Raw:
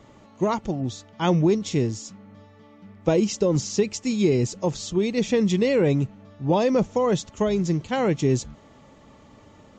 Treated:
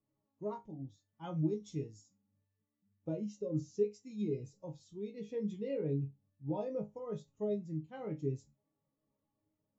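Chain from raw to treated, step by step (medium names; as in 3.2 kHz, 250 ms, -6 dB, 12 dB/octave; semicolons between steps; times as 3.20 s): 1.36–2.02 s: treble shelf 4.3 kHz +8.5 dB; chord resonator G#2 sus4, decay 0.27 s; spectral contrast expander 1.5:1; trim -1.5 dB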